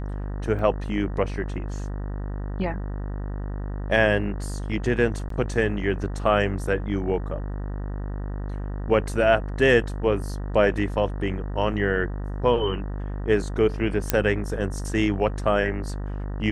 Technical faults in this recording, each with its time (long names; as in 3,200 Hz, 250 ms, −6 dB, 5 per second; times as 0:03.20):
mains buzz 50 Hz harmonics 38 −30 dBFS
0:00.59: drop-out 2.3 ms
0:05.29–0:05.30: drop-out 13 ms
0:14.10: click −3 dBFS